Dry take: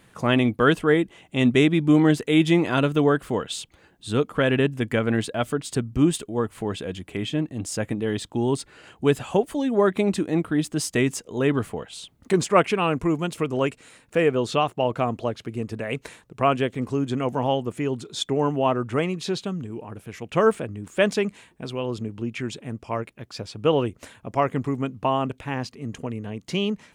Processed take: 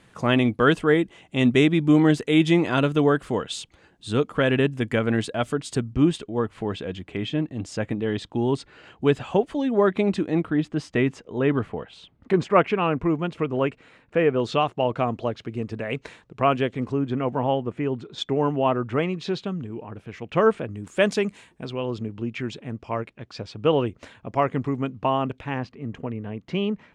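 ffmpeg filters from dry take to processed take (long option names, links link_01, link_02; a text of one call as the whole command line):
ffmpeg -i in.wav -af "asetnsamples=nb_out_samples=441:pad=0,asendcmd='5.93 lowpass f 4500;10.5 lowpass f 2700;14.4 lowpass f 5000;16.92 lowpass f 2500;18.18 lowpass f 4000;20.7 lowpass f 9800;21.65 lowpass f 4700;25.59 lowpass f 2500',lowpass=8400" out.wav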